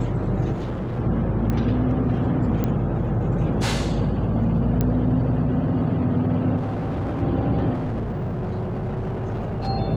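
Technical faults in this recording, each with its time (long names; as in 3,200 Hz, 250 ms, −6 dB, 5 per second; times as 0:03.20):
0:00.52–0:01.00: clipping −24.5 dBFS
0:01.50: click −13 dBFS
0:02.64: click −12 dBFS
0:04.81: click −10 dBFS
0:06.56–0:07.23: clipping −23 dBFS
0:07.73–0:09.68: clipping −23.5 dBFS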